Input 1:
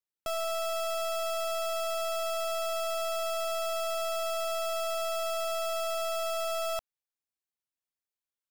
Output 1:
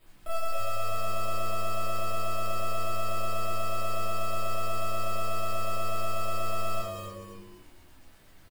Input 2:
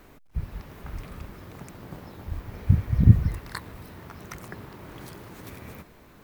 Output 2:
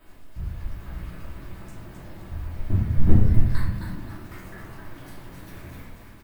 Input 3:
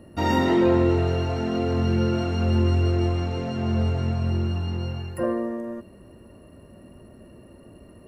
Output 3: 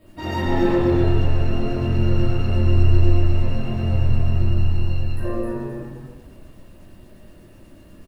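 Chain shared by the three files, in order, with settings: one-sided fold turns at -11.5 dBFS; added noise pink -57 dBFS; LFO notch square 8.2 Hz 500–6000 Hz; frequency-shifting echo 0.263 s, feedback 37%, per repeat -100 Hz, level -5 dB; shoebox room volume 140 m³, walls mixed, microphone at 2.8 m; gain -11.5 dB

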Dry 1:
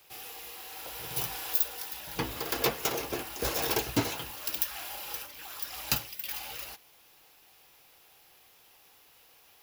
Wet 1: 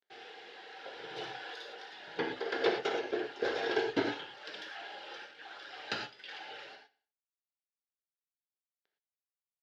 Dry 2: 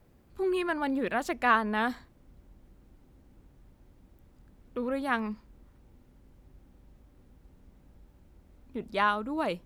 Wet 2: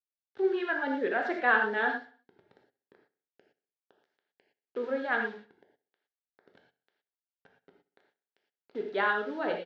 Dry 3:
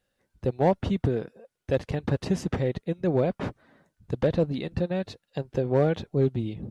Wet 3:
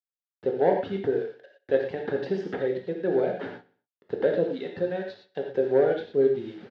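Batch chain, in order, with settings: reverb removal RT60 0.7 s; requantised 8-bit, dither none; speaker cabinet 300–3700 Hz, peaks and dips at 420 Hz +7 dB, 1100 Hz -10 dB, 1600 Hz +6 dB, 2500 Hz -7 dB; on a send: feedback echo 62 ms, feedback 48%, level -19 dB; on the sum: non-linear reverb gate 0.14 s flat, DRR 1.5 dB; gain -1.5 dB

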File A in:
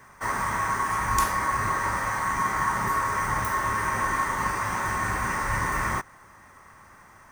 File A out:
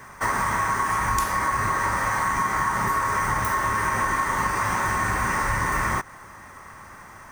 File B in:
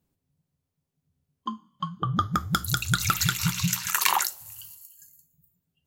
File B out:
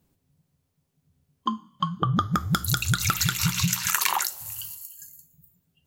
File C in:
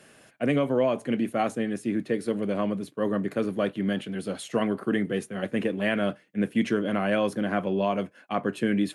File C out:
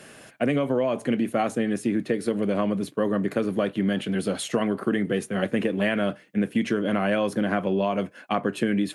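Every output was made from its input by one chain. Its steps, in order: compressor 5:1, threshold -28 dBFS; gain +7.5 dB

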